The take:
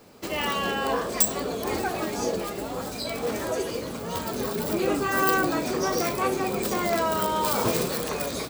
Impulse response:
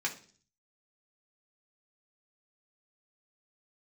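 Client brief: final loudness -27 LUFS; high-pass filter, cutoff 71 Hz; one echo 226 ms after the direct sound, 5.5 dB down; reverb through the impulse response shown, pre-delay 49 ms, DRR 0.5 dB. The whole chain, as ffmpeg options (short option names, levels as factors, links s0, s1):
-filter_complex "[0:a]highpass=71,aecho=1:1:226:0.531,asplit=2[s0][s1];[1:a]atrim=start_sample=2205,adelay=49[s2];[s1][s2]afir=irnorm=-1:irlink=0,volume=0.501[s3];[s0][s3]amix=inputs=2:normalize=0,volume=0.668"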